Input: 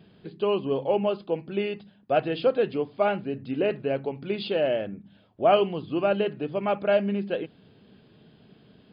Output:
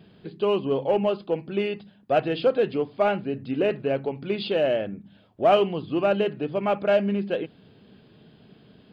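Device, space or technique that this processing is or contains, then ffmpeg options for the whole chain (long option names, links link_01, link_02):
parallel distortion: -filter_complex "[0:a]asplit=2[link_01][link_02];[link_02]asoftclip=type=hard:threshold=-22dB,volume=-11dB[link_03];[link_01][link_03]amix=inputs=2:normalize=0"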